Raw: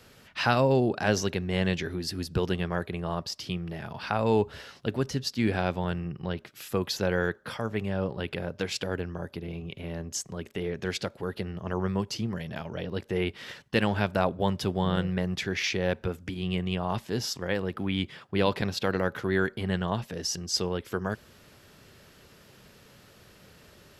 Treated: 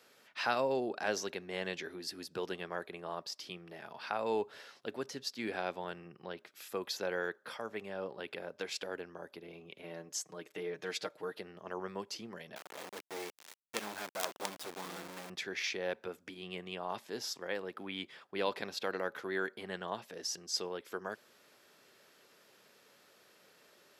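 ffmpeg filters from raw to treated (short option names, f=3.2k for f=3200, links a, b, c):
-filter_complex "[0:a]asettb=1/sr,asplit=3[a][b][c];[a]atrim=end=9.824[d];[b]atrim=start=9.82:end=11.39,asetpts=PTS-STARTPTS,afade=t=in:d=0.004:c=qsin,afade=t=out:st=1.566:d=0.004:c=qsin,aecho=1:1:6.5:0.65,atrim=end_sample=69237[e];[c]atrim=start=11.386[f];[d][e]acrossfade=d=0.004:c1=hsin:c2=qsin[g];[g][f]acrossfade=d=0.004:c1=qsin:c2=hsin,asettb=1/sr,asplit=3[h][i][j];[h]atrim=end=12.564[k];[i]atrim=start=12.56:end=15.3,asetpts=PTS-STARTPTS,afade=t=in:d=0.004:c=qsin,afade=t=out:st=2.736:d=0.004:c=qsin,acrusher=bits=3:dc=4:mix=0:aa=0.000001[l];[j]atrim=start=15.296[m];[k][l]acrossfade=d=0.004:c1=hsin:c2=qsin[n];[n][m]acrossfade=d=0.004:c1=qsin:c2=hsin,highpass=360,bandreject=f=2.9k:w=23,volume=-7dB"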